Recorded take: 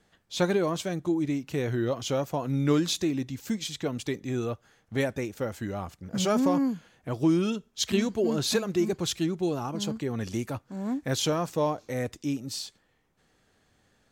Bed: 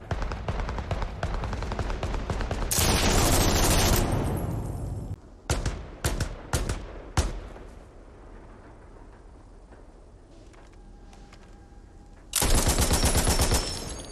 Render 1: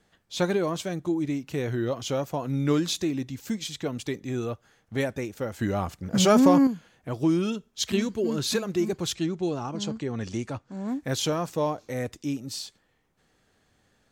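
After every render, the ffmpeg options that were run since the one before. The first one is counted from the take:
-filter_complex "[0:a]asettb=1/sr,asplit=3[s0][s1][s2];[s0]atrim=end=8.024[s3];[s1]atrim=start=8.02:end=8.58,asetpts=PTS-STARTPTS,afade=t=in:d=0.004:c=qsin,afade=t=out:st=0.556:d=0.004:c=qsin,equalizer=f=710:t=o:w=0.5:g=-8.5[s4];[s2]atrim=start=8.576[s5];[s3][s4]acrossfade=d=0.004:c1=hsin:c2=qsin[s6];[s6][s5]acrossfade=d=0.004:c1=qsin:c2=hsin,asettb=1/sr,asplit=3[s7][s8][s9];[s7]atrim=end=9.144[s10];[s8]atrim=start=9.14:end=10.88,asetpts=PTS-STARTPTS,afade=t=in:d=0.004:c=qsin,afade=t=out:st=1.736:d=0.004:c=qsin,lowpass=f=8100:w=0.5412,lowpass=f=8100:w=1.3066[s11];[s9]atrim=start=10.876[s12];[s10][s11]acrossfade=d=0.004:c1=hsin:c2=qsin[s13];[s13][s12]acrossfade=d=0.004:c1=qsin:c2=hsin,asplit=3[s14][s15][s16];[s14]atrim=end=5.592[s17];[s15]atrim=start=5.588:end=6.672,asetpts=PTS-STARTPTS,volume=2.11[s18];[s16]atrim=start=6.668[s19];[s17][s18]acrossfade=d=0.004:c1=hsin:c2=hsin[s20];[s20][s19]acrossfade=d=0.004:c1=hsin:c2=hsin"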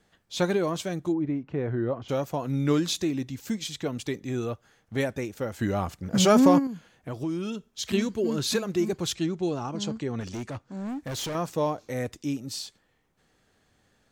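-filter_complex "[0:a]asplit=3[s0][s1][s2];[s0]afade=t=out:st=1.12:d=0.02[s3];[s1]lowpass=1500,afade=t=in:st=1.12:d=0.02,afade=t=out:st=2.08:d=0.02[s4];[s2]afade=t=in:st=2.08:d=0.02[s5];[s3][s4][s5]amix=inputs=3:normalize=0,asplit=3[s6][s7][s8];[s6]afade=t=out:st=6.58:d=0.02[s9];[s7]acompressor=threshold=0.0316:ratio=2.5:attack=3.2:release=140:knee=1:detection=peak,afade=t=in:st=6.58:d=0.02,afade=t=out:st=7.84:d=0.02[s10];[s8]afade=t=in:st=7.84:d=0.02[s11];[s9][s10][s11]amix=inputs=3:normalize=0,asettb=1/sr,asplit=3[s12][s13][s14];[s12]atrim=end=10.204[s15];[s13]atrim=start=10.2:end=11.35,asetpts=PTS-STARTPTS,afade=t=in:d=0.004:c=qsin,afade=t=out:st=1.146:d=0.004:c=qsin,asoftclip=type=hard:threshold=0.0299[s16];[s14]atrim=start=11.346[s17];[s15][s16]acrossfade=d=0.004:c1=hsin:c2=qsin[s18];[s18][s17]acrossfade=d=0.004:c1=qsin:c2=hsin"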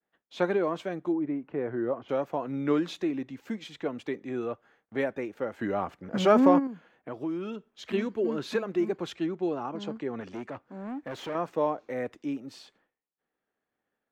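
-filter_complex "[0:a]agate=range=0.0224:threshold=0.00158:ratio=3:detection=peak,acrossover=split=220 2700:gain=0.141 1 0.1[s0][s1][s2];[s0][s1][s2]amix=inputs=3:normalize=0"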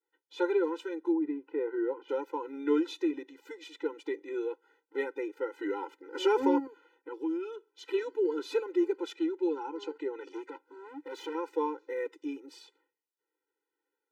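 -af "afftfilt=real='re*eq(mod(floor(b*sr/1024/260),2),1)':imag='im*eq(mod(floor(b*sr/1024/260),2),1)':win_size=1024:overlap=0.75"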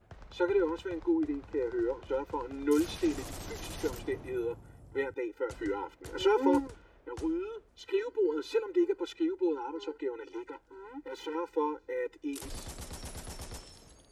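-filter_complex "[1:a]volume=0.0944[s0];[0:a][s0]amix=inputs=2:normalize=0"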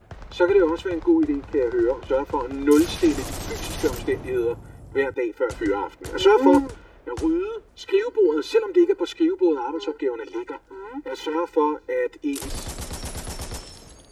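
-af "volume=3.35"

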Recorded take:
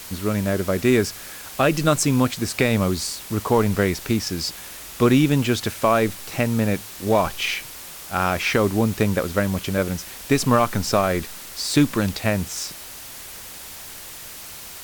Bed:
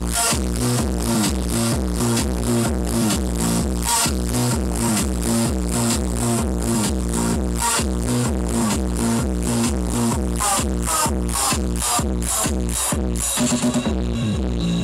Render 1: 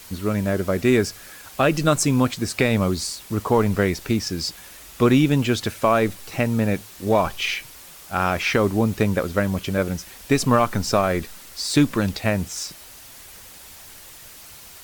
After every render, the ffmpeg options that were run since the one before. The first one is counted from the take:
-af "afftdn=nr=6:nf=-38"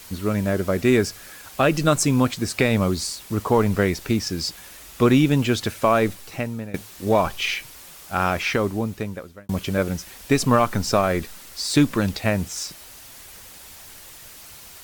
-filter_complex "[0:a]asplit=3[s0][s1][s2];[s0]atrim=end=6.74,asetpts=PTS-STARTPTS,afade=t=out:st=6.08:d=0.66:silence=0.11885[s3];[s1]atrim=start=6.74:end=9.49,asetpts=PTS-STARTPTS,afade=t=in:d=0.004:c=hsin:silence=0.11885,afade=t=out:st=1.52:d=1.23[s4];[s2]atrim=start=9.49,asetpts=PTS-STARTPTS,afade=t=in:d=0.004:c=hsin[s5];[s3][s4][s5]concat=n=3:v=0:a=1"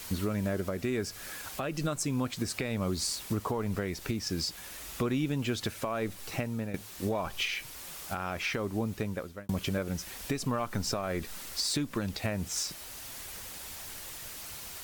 -af "acompressor=threshold=0.0562:ratio=4,alimiter=limit=0.0891:level=0:latency=1:release=470"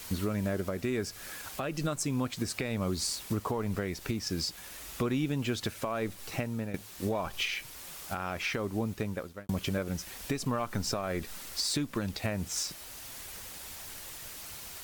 -af "aeval=exprs='sgn(val(0))*max(abs(val(0))-0.00112,0)':c=same"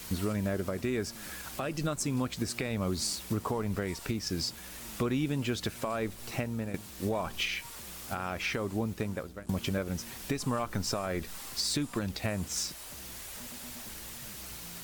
-filter_complex "[1:a]volume=0.0266[s0];[0:a][s0]amix=inputs=2:normalize=0"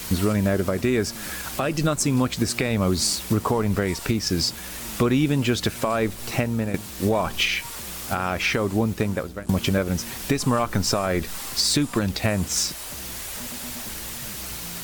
-af "volume=3.16"

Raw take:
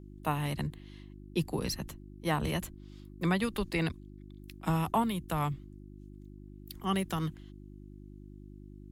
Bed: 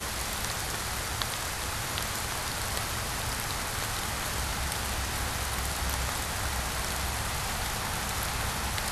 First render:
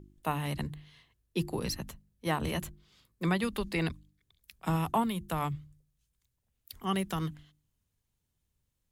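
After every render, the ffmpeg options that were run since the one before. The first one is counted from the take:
-af "bandreject=f=50:t=h:w=4,bandreject=f=100:t=h:w=4,bandreject=f=150:t=h:w=4,bandreject=f=200:t=h:w=4,bandreject=f=250:t=h:w=4,bandreject=f=300:t=h:w=4,bandreject=f=350:t=h:w=4"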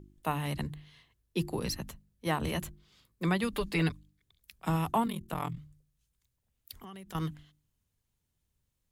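-filter_complex "[0:a]asettb=1/sr,asplit=3[s0][s1][s2];[s0]atrim=end=3.524[s3];[s1]atrim=start=3.52:end=3.92,asetpts=PTS-STARTPTS,afade=t=in:d=0.004:c=qsin,afade=t=out:st=0.396:d=0.004:c=qsin,aecho=1:1:6.8:0.65,atrim=end_sample=17640[s4];[s2]atrim=start=3.916[s5];[s3][s4]acrossfade=d=0.004:c1=hsin:c2=qsin[s6];[s6][s5]acrossfade=d=0.004:c1=qsin:c2=hsin,asettb=1/sr,asplit=3[s7][s8][s9];[s7]atrim=end=5.064[s10];[s8]atrim=start=5.06:end=5.58,asetpts=PTS-STARTPTS,afade=t=in:d=0.004:c=qsin,afade=t=out:st=0.516:d=0.004:c=qsin,aeval=exprs='val(0)*sin(2*PI*21*n/s)':c=same[s11];[s9]atrim=start=5.576[s12];[s10][s11]acrossfade=d=0.004:c1=hsin:c2=qsin[s13];[s13][s12]acrossfade=d=0.004:c1=qsin:c2=hsin,asettb=1/sr,asplit=3[s14][s15][s16];[s14]atrim=end=6.754[s17];[s15]atrim=start=6.75:end=7.15,asetpts=PTS-STARTPTS,afade=t=in:d=0.004:c=qsin,afade=t=out:st=0.396:d=0.004:c=qsin,acompressor=threshold=0.00631:ratio=6:attack=3.2:release=140:knee=1:detection=peak[s18];[s16]atrim=start=7.146[s19];[s17][s18]acrossfade=d=0.004:c1=hsin:c2=qsin[s20];[s20][s19]acrossfade=d=0.004:c1=qsin:c2=hsin"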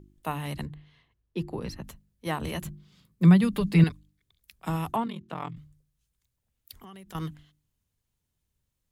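-filter_complex "[0:a]asettb=1/sr,asplit=3[s0][s1][s2];[s0]atrim=end=0.654[s3];[s1]atrim=start=0.65:end=1.84,asetpts=PTS-STARTPTS,afade=t=in:d=0.004:c=qsin,afade=t=out:st=1.186:d=0.004:c=qsin,lowpass=f=2000:p=1[s4];[s2]atrim=start=1.836[s5];[s3][s4]acrossfade=d=0.004:c1=hsin:c2=qsin[s6];[s6][s5]acrossfade=d=0.004:c1=qsin:c2=hsin,asettb=1/sr,asplit=3[s7][s8][s9];[s7]atrim=end=2.654[s10];[s8]atrim=start=2.65:end=3.84,asetpts=PTS-STARTPTS,afade=t=in:d=0.004:c=qsin,afade=t=out:st=1.186:d=0.004:c=qsin,equalizer=f=170:w=1.4:g=15[s11];[s9]atrim=start=3.836[s12];[s10][s11]acrossfade=d=0.004:c1=hsin:c2=qsin[s13];[s13][s12]acrossfade=d=0.004:c1=qsin:c2=hsin,asettb=1/sr,asplit=3[s14][s15][s16];[s14]atrim=end=4.964[s17];[s15]atrim=start=4.96:end=5.56,asetpts=PTS-STARTPTS,afade=t=in:d=0.004:c=qsin,afade=t=out:st=0.596:d=0.004:c=qsin,highpass=130,lowpass=4600[s18];[s16]atrim=start=5.556[s19];[s17][s18]acrossfade=d=0.004:c1=hsin:c2=qsin[s20];[s20][s19]acrossfade=d=0.004:c1=qsin:c2=hsin"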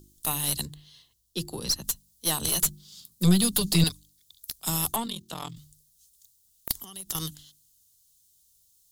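-af "aexciter=amount=12.9:drive=5.4:freq=3400,aeval=exprs='(tanh(4.47*val(0)+0.55)-tanh(0.55))/4.47':c=same"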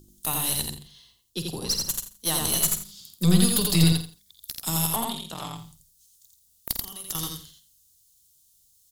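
-filter_complex "[0:a]asplit=2[s0][s1];[s1]adelay=49,volume=0.282[s2];[s0][s2]amix=inputs=2:normalize=0,aecho=1:1:85|170|255:0.708|0.149|0.0312"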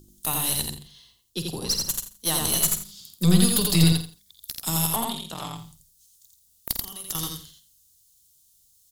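-af "volume=1.12"

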